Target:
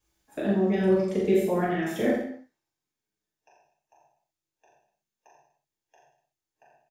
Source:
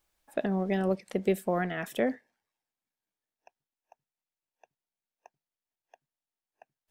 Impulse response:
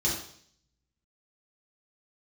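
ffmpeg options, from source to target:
-filter_complex "[0:a]aecho=1:1:40|84|132.4|185.6|244.2:0.631|0.398|0.251|0.158|0.1[s0];[1:a]atrim=start_sample=2205,atrim=end_sample=6174[s1];[s0][s1]afir=irnorm=-1:irlink=0,volume=0.398"

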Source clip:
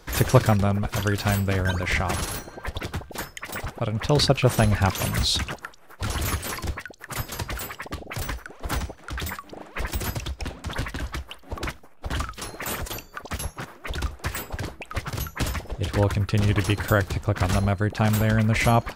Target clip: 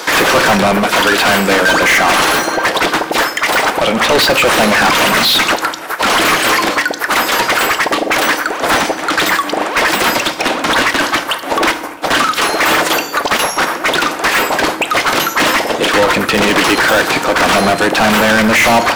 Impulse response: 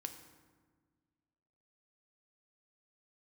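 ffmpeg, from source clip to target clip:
-filter_complex "[0:a]highpass=f=200:w=0.5412,highpass=f=200:w=1.3066,acrossover=split=3700[s0][s1];[s1]acompressor=threshold=0.00501:ratio=4:attack=1:release=60[s2];[s0][s2]amix=inputs=2:normalize=0,asplit=2[s3][s4];[s4]highpass=f=720:p=1,volume=70.8,asoftclip=type=tanh:threshold=0.708[s5];[s3][s5]amix=inputs=2:normalize=0,lowpass=f=4900:p=1,volume=0.501,asplit=2[s6][s7];[1:a]atrim=start_sample=2205,afade=t=out:st=0.36:d=0.01,atrim=end_sample=16317,highshelf=f=7200:g=8.5[s8];[s7][s8]afir=irnorm=-1:irlink=0,volume=2.11[s9];[s6][s9]amix=inputs=2:normalize=0,volume=0.422"

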